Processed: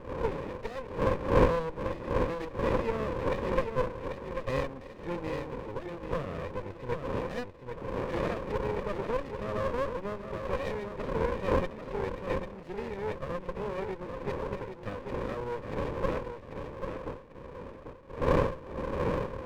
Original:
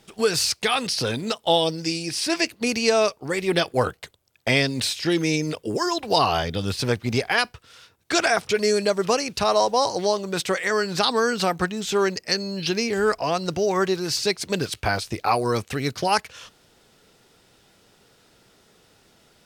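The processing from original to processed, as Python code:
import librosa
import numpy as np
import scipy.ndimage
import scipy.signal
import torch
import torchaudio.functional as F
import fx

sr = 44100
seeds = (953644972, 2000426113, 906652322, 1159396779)

p1 = fx.dmg_wind(x, sr, seeds[0], corner_hz=470.0, level_db=-22.0)
p2 = fx.formant_cascade(p1, sr, vowel='e')
p3 = p2 + fx.echo_feedback(p2, sr, ms=791, feedback_pct=25, wet_db=-6.5, dry=0)
y = fx.running_max(p3, sr, window=33)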